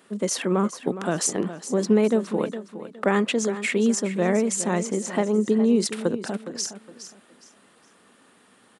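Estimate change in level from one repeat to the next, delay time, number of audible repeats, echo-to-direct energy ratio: −11.0 dB, 414 ms, 3, −12.0 dB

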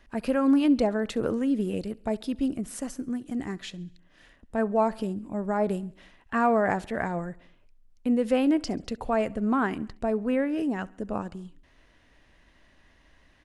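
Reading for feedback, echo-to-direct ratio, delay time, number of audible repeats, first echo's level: 59%, −22.0 dB, 68 ms, 3, −24.0 dB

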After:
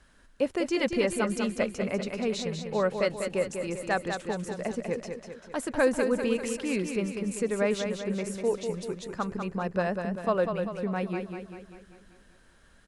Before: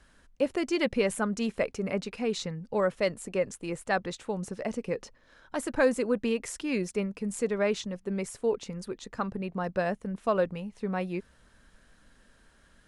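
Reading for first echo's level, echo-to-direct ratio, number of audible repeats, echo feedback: −6.5 dB, −5.0 dB, 6, 53%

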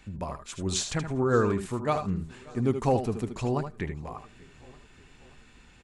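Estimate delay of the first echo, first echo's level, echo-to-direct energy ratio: 76 ms, −9.5 dB, −8.0 dB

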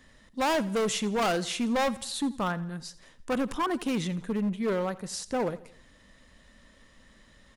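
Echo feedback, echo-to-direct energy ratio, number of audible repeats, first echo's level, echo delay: 47%, −18.0 dB, 3, −19.0 dB, 84 ms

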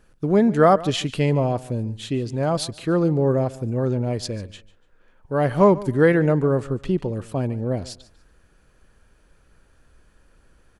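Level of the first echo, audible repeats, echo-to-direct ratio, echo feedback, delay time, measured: −19.0 dB, 2, −18.5 dB, 26%, 145 ms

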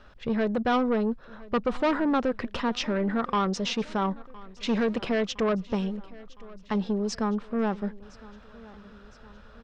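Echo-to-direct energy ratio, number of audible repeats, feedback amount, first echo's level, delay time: −20.0 dB, 3, 57%, −21.5 dB, 1,012 ms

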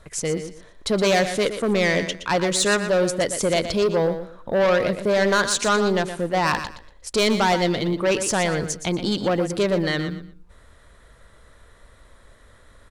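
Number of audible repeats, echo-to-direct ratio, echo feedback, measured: 2, −10.0 dB, 23%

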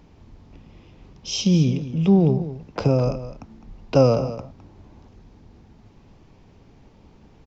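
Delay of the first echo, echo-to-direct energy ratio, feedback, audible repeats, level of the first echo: 209 ms, −13.0 dB, repeats not evenly spaced, 1, −13.0 dB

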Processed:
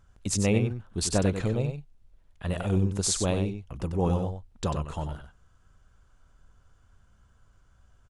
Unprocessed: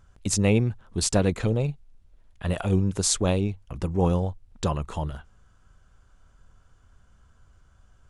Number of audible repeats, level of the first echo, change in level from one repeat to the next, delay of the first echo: 1, −7.5 dB, repeats not evenly spaced, 94 ms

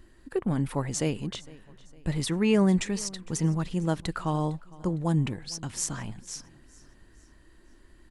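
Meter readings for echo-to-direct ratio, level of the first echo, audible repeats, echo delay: −21.0 dB, −22.0 dB, 2, 457 ms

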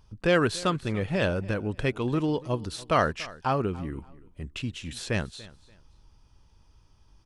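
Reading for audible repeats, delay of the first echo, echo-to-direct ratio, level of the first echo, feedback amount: 2, 288 ms, −19.5 dB, −20.0 dB, 26%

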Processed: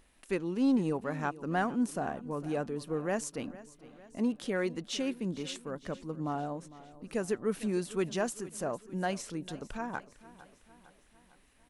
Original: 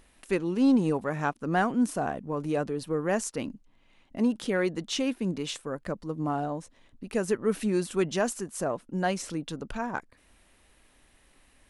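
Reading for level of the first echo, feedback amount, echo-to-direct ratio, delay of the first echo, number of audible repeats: −18.0 dB, 55%, −16.5 dB, 454 ms, 4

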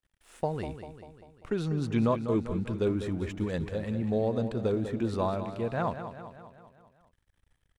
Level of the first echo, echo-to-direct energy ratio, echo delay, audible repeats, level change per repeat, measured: −10.0 dB, −8.5 dB, 197 ms, 5, −5.0 dB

